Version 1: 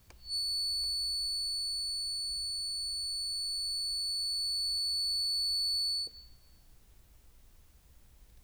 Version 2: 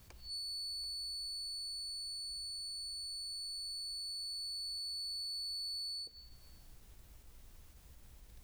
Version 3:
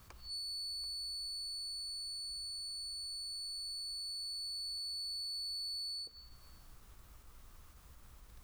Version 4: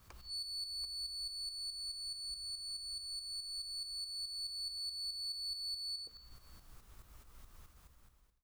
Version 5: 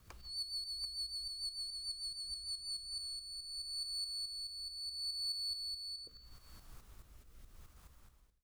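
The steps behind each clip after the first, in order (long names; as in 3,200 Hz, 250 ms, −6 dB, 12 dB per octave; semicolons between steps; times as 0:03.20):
downward compressor 2 to 1, threshold −54 dBFS, peak gain reduction 12.5 dB; level that may rise only so fast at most 190 dB per second; level +3 dB
parametric band 1,200 Hz +10 dB 0.64 octaves
fade-out on the ending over 0.86 s; shaped tremolo saw up 4.7 Hz, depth 60%; level +2.5 dB
rotating-speaker cabinet horn 6.7 Hz, later 0.75 Hz, at 0:02.32; level +2.5 dB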